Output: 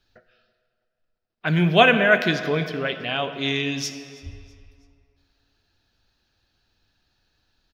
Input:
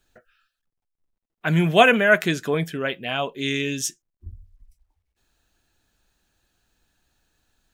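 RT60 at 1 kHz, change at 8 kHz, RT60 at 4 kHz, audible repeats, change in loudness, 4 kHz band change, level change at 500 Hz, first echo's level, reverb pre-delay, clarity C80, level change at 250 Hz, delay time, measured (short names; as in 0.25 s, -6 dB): 2.4 s, -6.0 dB, 1.9 s, 2, 0.0 dB, +2.0 dB, -0.5 dB, -22.0 dB, 36 ms, 10.5 dB, 0.0 dB, 0.326 s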